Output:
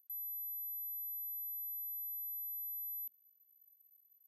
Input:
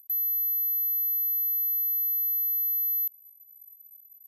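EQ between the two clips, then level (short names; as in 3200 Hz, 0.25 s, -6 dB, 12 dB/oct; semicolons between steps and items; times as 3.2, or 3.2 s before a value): rippled Chebyshev high-pass 180 Hz, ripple 6 dB; band shelf 1200 Hz -10.5 dB; fixed phaser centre 2800 Hz, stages 4; -7.5 dB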